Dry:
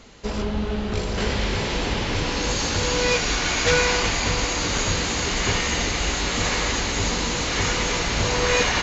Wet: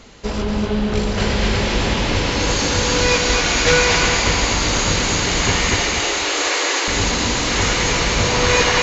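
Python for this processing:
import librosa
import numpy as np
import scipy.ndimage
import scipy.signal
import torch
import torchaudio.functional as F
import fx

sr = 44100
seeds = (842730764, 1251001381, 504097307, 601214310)

y = fx.steep_highpass(x, sr, hz=290.0, slope=96, at=(5.77, 6.88))
y = fx.echo_feedback(y, sr, ms=243, feedback_pct=30, wet_db=-4.0)
y = F.gain(torch.from_numpy(y), 4.0).numpy()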